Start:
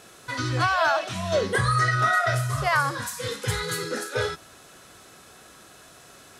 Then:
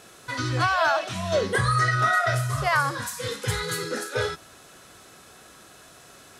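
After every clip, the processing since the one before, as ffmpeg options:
ffmpeg -i in.wav -af anull out.wav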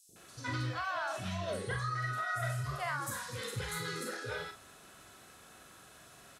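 ffmpeg -i in.wav -filter_complex "[0:a]acompressor=threshold=-27dB:ratio=6,asplit=2[link_01][link_02];[link_02]adelay=42,volume=-7dB[link_03];[link_01][link_03]amix=inputs=2:normalize=0,acrossover=split=430|5300[link_04][link_05][link_06];[link_04]adelay=90[link_07];[link_05]adelay=160[link_08];[link_07][link_08][link_06]amix=inputs=3:normalize=0,volume=-6.5dB" out.wav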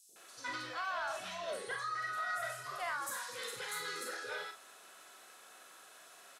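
ffmpeg -i in.wav -af "highpass=490,asoftclip=type=tanh:threshold=-29.5dB" out.wav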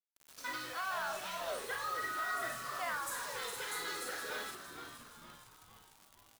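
ffmpeg -i in.wav -filter_complex "[0:a]highpass=frequency=120:poles=1,acrusher=bits=7:mix=0:aa=0.000001,asplit=7[link_01][link_02][link_03][link_04][link_05][link_06][link_07];[link_02]adelay=464,afreqshift=-130,volume=-9dB[link_08];[link_03]adelay=928,afreqshift=-260,volume=-14.8dB[link_09];[link_04]adelay=1392,afreqshift=-390,volume=-20.7dB[link_10];[link_05]adelay=1856,afreqshift=-520,volume=-26.5dB[link_11];[link_06]adelay=2320,afreqshift=-650,volume=-32.4dB[link_12];[link_07]adelay=2784,afreqshift=-780,volume=-38.2dB[link_13];[link_01][link_08][link_09][link_10][link_11][link_12][link_13]amix=inputs=7:normalize=0" out.wav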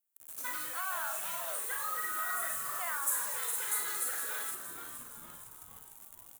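ffmpeg -i in.wav -filter_complex "[0:a]highshelf=frequency=2800:gain=-8,acrossover=split=800|3600[link_01][link_02][link_03];[link_01]acompressor=threshold=-57dB:ratio=5[link_04];[link_04][link_02][link_03]amix=inputs=3:normalize=0,aexciter=amount=8.9:drive=3.3:freq=7000,volume=2.5dB" out.wav

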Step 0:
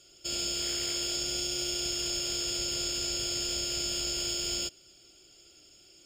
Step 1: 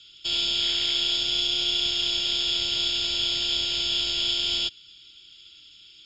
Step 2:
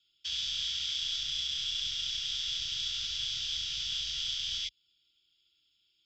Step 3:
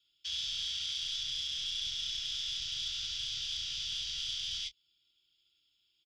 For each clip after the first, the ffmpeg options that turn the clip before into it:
ffmpeg -i in.wav -filter_complex "[0:a]lowshelf=frequency=250:gain=-3.5,acrossover=split=280|1100[link_01][link_02][link_03];[link_02]acrusher=bits=6:dc=4:mix=0:aa=0.000001[link_04];[link_01][link_04][link_03]amix=inputs=3:normalize=0,lowpass=frequency=3600:width_type=q:width=8.2,volume=2.5dB" out.wav
ffmpeg -i in.wav -filter_complex "[0:a]acrossover=split=170|3000[link_01][link_02][link_03];[link_02]acompressor=threshold=-39dB:ratio=6[link_04];[link_01][link_04][link_03]amix=inputs=3:normalize=0,afwtdn=0.0158,volume=-6.5dB" out.wav
ffmpeg -i in.wav -filter_complex "[0:a]acrossover=split=160|2900[link_01][link_02][link_03];[link_02]asoftclip=type=tanh:threshold=-40dB[link_04];[link_01][link_04][link_03]amix=inputs=3:normalize=0,asplit=2[link_05][link_06];[link_06]adelay=25,volume=-13dB[link_07];[link_05][link_07]amix=inputs=2:normalize=0,volume=-2dB" out.wav

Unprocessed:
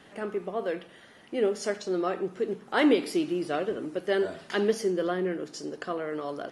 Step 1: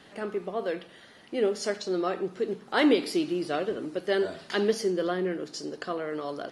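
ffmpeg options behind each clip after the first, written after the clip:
ffmpeg -i in.wav -af "equalizer=frequency=4300:width_type=o:width=0.61:gain=6" out.wav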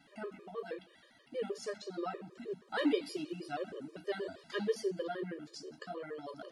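ffmpeg -i in.wav -af "flanger=delay=7:depth=7.7:regen=-47:speed=0.81:shape=sinusoidal,afftfilt=real='re*gt(sin(2*PI*6.3*pts/sr)*(1-2*mod(floor(b*sr/1024/320),2)),0)':imag='im*gt(sin(2*PI*6.3*pts/sr)*(1-2*mod(floor(b*sr/1024/320),2)),0)':win_size=1024:overlap=0.75,volume=-3.5dB" out.wav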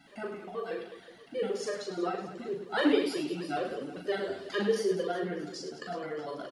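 ffmpeg -i in.wav -af "aecho=1:1:40|104|206.4|370.2|632.4:0.631|0.398|0.251|0.158|0.1,volume=4.5dB" out.wav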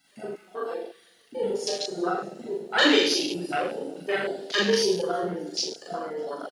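ffmpeg -i in.wav -af "aecho=1:1:40|84|132.4|185.6|244.2:0.631|0.398|0.251|0.158|0.1,crystalizer=i=8.5:c=0,afwtdn=0.0398" out.wav

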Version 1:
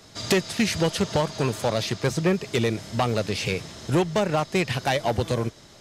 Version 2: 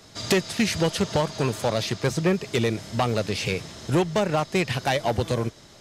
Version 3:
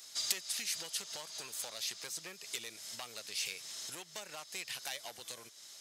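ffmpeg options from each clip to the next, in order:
ffmpeg -i in.wav -af anull out.wav
ffmpeg -i in.wav -af "acompressor=threshold=-31dB:ratio=4,aderivative,volume=4dB" out.wav

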